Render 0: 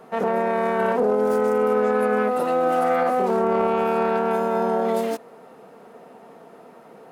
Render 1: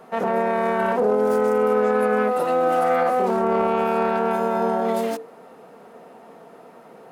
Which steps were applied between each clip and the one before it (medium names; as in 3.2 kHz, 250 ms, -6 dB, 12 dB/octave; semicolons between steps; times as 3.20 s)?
hum notches 50/100/150/200/250/300/350/400/450 Hz; trim +1 dB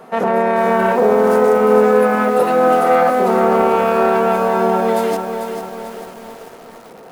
bit-crushed delay 444 ms, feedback 55%, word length 7-bit, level -7 dB; trim +6 dB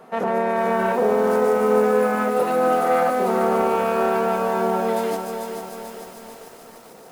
feedback echo behind a high-pass 147 ms, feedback 83%, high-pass 4.9 kHz, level -3 dB; trim -6 dB